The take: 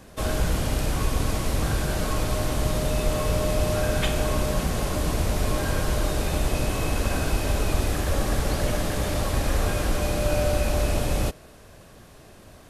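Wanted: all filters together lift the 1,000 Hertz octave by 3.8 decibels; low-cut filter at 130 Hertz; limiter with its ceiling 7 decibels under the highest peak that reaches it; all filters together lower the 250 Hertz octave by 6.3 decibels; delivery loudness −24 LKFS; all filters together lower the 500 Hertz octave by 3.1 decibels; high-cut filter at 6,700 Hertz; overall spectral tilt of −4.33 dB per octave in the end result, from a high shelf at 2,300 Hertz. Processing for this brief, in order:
high-pass filter 130 Hz
low-pass filter 6,700 Hz
parametric band 250 Hz −7 dB
parametric band 500 Hz −5 dB
parametric band 1,000 Hz +8.5 dB
high-shelf EQ 2,300 Hz −9 dB
level +8.5 dB
brickwall limiter −14.5 dBFS

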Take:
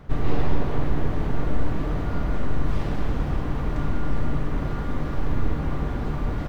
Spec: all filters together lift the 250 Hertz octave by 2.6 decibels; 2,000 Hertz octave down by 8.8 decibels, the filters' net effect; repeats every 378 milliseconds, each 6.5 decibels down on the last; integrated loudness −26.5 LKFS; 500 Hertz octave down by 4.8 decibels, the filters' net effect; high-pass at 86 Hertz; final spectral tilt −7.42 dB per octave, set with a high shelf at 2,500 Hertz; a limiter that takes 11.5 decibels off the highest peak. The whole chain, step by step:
high-pass filter 86 Hz
parametric band 250 Hz +6 dB
parametric band 500 Hz −8 dB
parametric band 2,000 Hz −8 dB
high-shelf EQ 2,500 Hz −8.5 dB
brickwall limiter −26 dBFS
repeating echo 378 ms, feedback 47%, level −6.5 dB
level +7 dB

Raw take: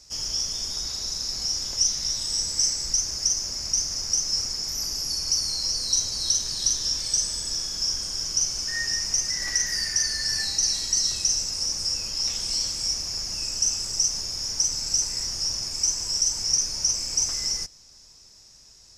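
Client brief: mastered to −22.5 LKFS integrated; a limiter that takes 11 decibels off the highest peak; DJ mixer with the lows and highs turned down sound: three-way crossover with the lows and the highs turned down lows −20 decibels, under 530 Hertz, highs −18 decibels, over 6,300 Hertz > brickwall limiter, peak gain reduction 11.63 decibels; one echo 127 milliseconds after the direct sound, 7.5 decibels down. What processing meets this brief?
brickwall limiter −20 dBFS
three-way crossover with the lows and the highs turned down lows −20 dB, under 530 Hz, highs −18 dB, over 6,300 Hz
single-tap delay 127 ms −7.5 dB
level +14.5 dB
brickwall limiter −17.5 dBFS

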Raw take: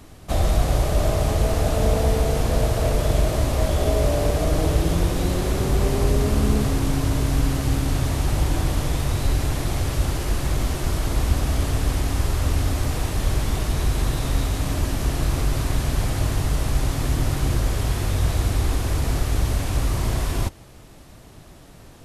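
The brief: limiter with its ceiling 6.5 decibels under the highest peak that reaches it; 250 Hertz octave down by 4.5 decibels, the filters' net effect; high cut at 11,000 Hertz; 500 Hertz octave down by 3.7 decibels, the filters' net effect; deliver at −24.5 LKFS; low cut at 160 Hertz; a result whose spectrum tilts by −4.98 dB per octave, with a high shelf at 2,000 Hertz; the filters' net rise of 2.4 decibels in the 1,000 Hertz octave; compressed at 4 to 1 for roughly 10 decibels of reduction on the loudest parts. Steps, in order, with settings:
high-pass filter 160 Hz
low-pass filter 11,000 Hz
parametric band 250 Hz −3 dB
parametric band 500 Hz −6 dB
parametric band 1,000 Hz +7 dB
high-shelf EQ 2,000 Hz −6 dB
downward compressor 4 to 1, threshold −35 dBFS
level +15 dB
brickwall limiter −15 dBFS

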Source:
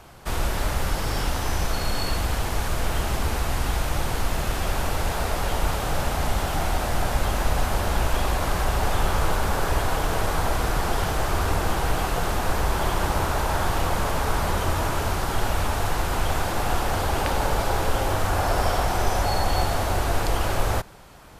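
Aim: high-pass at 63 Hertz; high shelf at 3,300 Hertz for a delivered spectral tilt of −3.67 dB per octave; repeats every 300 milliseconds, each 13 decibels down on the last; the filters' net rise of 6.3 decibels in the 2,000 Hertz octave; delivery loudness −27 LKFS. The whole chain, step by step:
high-pass filter 63 Hz
parametric band 2,000 Hz +7 dB
high-shelf EQ 3,300 Hz +4.5 dB
repeating echo 300 ms, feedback 22%, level −13 dB
level −3.5 dB

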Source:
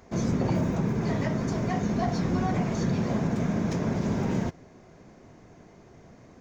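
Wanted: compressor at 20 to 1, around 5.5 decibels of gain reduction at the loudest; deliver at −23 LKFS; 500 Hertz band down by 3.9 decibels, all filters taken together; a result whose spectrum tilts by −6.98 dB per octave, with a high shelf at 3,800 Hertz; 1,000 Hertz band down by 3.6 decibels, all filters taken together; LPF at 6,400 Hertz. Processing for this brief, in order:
low-pass filter 6,400 Hz
parametric band 500 Hz −4.5 dB
parametric band 1,000 Hz −3.5 dB
high-shelf EQ 3,800 Hz +7 dB
downward compressor 20 to 1, threshold −28 dBFS
level +10 dB

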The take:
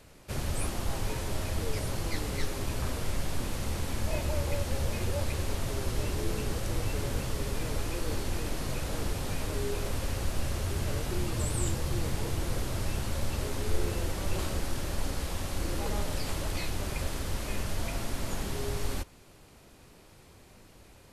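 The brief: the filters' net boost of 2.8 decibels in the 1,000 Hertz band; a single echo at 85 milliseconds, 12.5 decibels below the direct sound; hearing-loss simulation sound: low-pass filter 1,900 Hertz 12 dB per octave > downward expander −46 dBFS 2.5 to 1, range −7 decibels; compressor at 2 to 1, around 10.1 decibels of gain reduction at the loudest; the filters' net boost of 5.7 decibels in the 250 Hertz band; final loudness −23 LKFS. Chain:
parametric band 250 Hz +7.5 dB
parametric band 1,000 Hz +3.5 dB
downward compressor 2 to 1, threshold −39 dBFS
low-pass filter 1,900 Hz 12 dB per octave
single-tap delay 85 ms −12.5 dB
downward expander −46 dBFS 2.5 to 1, range −7 dB
level +17 dB

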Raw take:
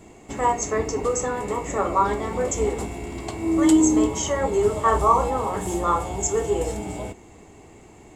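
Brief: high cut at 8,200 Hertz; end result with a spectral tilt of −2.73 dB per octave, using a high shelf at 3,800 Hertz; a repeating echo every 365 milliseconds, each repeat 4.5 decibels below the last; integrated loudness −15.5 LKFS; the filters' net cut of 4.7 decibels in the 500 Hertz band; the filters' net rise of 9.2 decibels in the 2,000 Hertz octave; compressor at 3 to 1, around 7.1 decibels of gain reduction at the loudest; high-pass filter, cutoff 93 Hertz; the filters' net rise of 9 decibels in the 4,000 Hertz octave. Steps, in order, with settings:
high-pass filter 93 Hz
low-pass filter 8,200 Hz
parametric band 500 Hz −6.5 dB
parametric band 2,000 Hz +8.5 dB
high-shelf EQ 3,800 Hz +6 dB
parametric band 4,000 Hz +5.5 dB
downward compressor 3 to 1, threshold −21 dBFS
repeating echo 365 ms, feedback 60%, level −4.5 dB
level +8.5 dB

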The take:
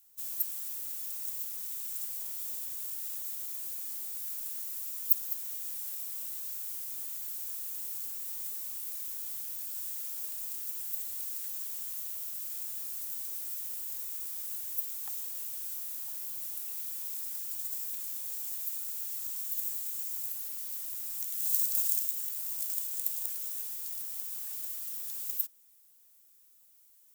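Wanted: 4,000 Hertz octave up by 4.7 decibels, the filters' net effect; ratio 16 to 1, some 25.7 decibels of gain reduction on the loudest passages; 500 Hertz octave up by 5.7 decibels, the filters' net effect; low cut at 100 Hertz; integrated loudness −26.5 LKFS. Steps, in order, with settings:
high-pass filter 100 Hz
parametric band 500 Hz +7 dB
parametric band 4,000 Hz +6 dB
downward compressor 16 to 1, threshold −44 dBFS
level +18.5 dB

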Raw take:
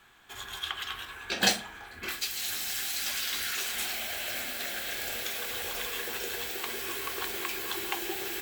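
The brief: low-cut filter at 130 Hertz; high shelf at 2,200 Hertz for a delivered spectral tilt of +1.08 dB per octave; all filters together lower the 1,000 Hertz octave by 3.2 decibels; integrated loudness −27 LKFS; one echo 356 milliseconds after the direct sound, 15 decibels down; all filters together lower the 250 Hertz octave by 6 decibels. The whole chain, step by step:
high-pass filter 130 Hz
parametric band 250 Hz −8.5 dB
parametric band 1,000 Hz −5 dB
high-shelf EQ 2,200 Hz +5 dB
single-tap delay 356 ms −15 dB
level +1 dB

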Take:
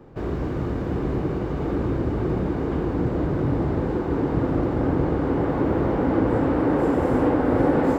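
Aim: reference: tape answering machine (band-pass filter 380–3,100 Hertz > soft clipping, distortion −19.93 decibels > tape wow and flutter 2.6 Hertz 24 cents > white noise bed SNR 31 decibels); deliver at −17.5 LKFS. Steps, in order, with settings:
band-pass filter 380–3,100 Hz
soft clipping −17 dBFS
tape wow and flutter 2.6 Hz 24 cents
white noise bed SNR 31 dB
level +11.5 dB

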